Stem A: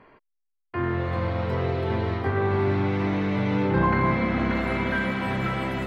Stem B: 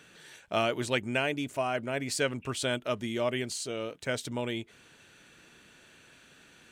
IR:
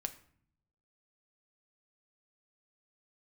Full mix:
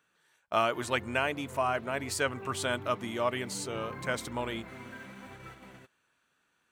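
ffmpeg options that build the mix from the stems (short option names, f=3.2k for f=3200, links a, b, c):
-filter_complex "[0:a]aeval=exprs='sgn(val(0))*max(abs(val(0))-0.00473,0)':c=same,flanger=delay=2.1:depth=6.3:regen=-10:speed=0.92:shape=sinusoidal,volume=-16.5dB[a];[1:a]equalizer=f=1.1k:w=1.2:g=11,volume=-4.5dB[b];[a][b]amix=inputs=2:normalize=0,agate=range=-17dB:threshold=-47dB:ratio=16:detection=peak,highshelf=f=11k:g=11"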